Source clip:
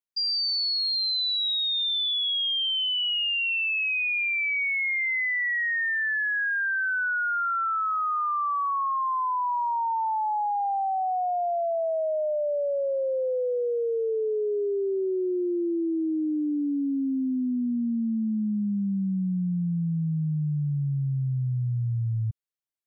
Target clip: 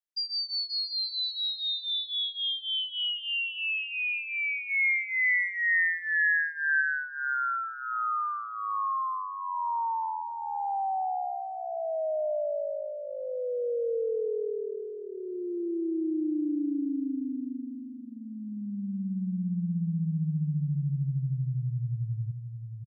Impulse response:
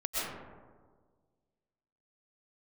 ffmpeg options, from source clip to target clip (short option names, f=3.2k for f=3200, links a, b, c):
-filter_complex "[0:a]asplit=3[a][b][c];[a]afade=t=out:st=4.69:d=0.02[d];[b]acontrast=26,afade=t=in:st=4.69:d=0.02,afade=t=out:st=6.8:d=0.02[e];[c]afade=t=in:st=6.8:d=0.02[f];[d][e][f]amix=inputs=3:normalize=0,aecho=1:1:6.5:0.83,asplit=2[g][h];[h]adelay=529,lowpass=f=2.8k:p=1,volume=-7dB,asplit=2[i][j];[j]adelay=529,lowpass=f=2.8k:p=1,volume=0.23,asplit=2[k][l];[l]adelay=529,lowpass=f=2.8k:p=1,volume=0.23[m];[g][i][k][m]amix=inputs=4:normalize=0,volume=-8dB"